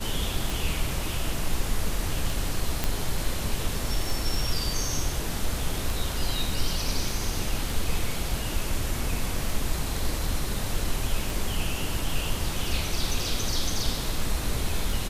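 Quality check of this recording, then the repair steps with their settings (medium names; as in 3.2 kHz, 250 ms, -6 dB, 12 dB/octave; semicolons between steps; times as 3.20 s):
tick 33 1/3 rpm
2.84 s: pop -9 dBFS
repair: de-click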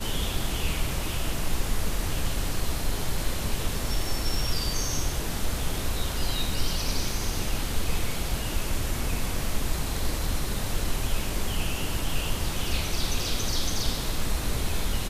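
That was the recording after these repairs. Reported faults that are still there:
nothing left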